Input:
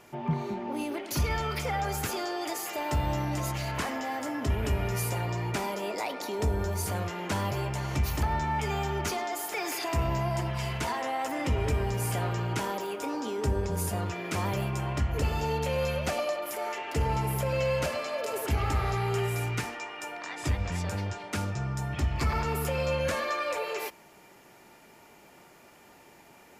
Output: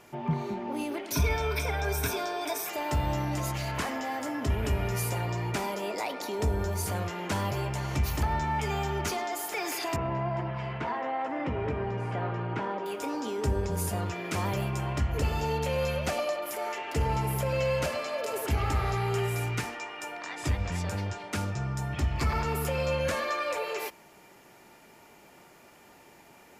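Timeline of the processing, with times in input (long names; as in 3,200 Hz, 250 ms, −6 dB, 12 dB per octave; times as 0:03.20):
0:01.12–0:02.69: EQ curve with evenly spaced ripples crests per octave 1.6, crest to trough 13 dB
0:09.96–0:12.86: band-pass filter 120–2,000 Hz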